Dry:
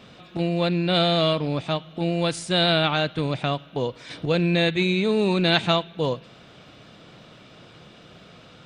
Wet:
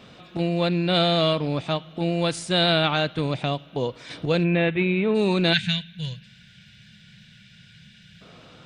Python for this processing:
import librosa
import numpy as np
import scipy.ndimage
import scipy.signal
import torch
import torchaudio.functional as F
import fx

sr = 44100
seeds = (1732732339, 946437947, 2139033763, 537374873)

y = fx.dynamic_eq(x, sr, hz=1400.0, q=1.6, threshold_db=-43.0, ratio=4.0, max_db=-6, at=(3.33, 3.83))
y = fx.steep_lowpass(y, sr, hz=3000.0, slope=36, at=(4.43, 5.14), fade=0.02)
y = fx.spec_box(y, sr, start_s=5.53, length_s=2.68, low_hz=220.0, high_hz=1400.0, gain_db=-24)